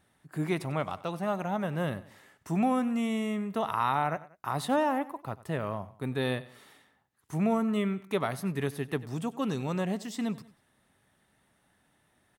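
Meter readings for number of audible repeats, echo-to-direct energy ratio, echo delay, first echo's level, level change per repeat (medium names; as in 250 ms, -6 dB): 2, -17.5 dB, 94 ms, -18.5 dB, -7.0 dB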